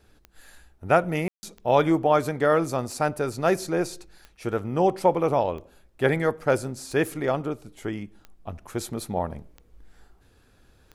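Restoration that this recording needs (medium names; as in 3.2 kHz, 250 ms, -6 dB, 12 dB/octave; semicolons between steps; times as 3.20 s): de-click; room tone fill 1.28–1.43 s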